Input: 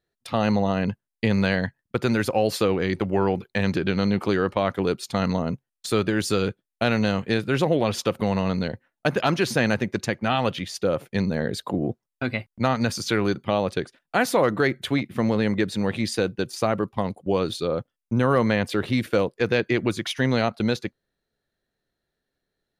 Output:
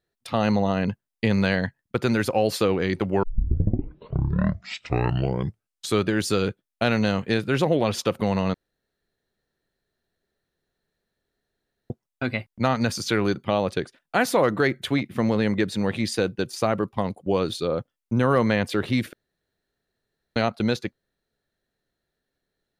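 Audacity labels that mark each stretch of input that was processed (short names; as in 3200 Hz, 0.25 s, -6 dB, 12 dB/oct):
3.230000	3.230000	tape start 2.81 s
8.540000	11.900000	room tone
19.130000	20.360000	room tone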